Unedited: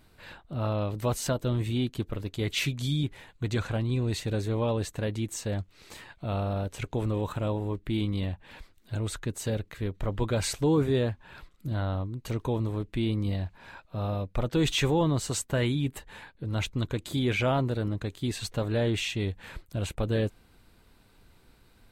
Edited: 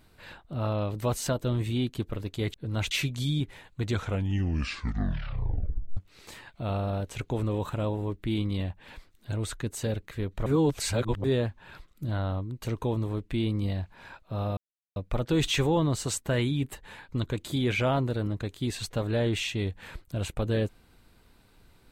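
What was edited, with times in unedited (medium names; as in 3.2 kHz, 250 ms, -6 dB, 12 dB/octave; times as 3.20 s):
3.53 s: tape stop 2.07 s
10.09–10.87 s: reverse
14.20 s: insert silence 0.39 s
16.33–16.70 s: move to 2.54 s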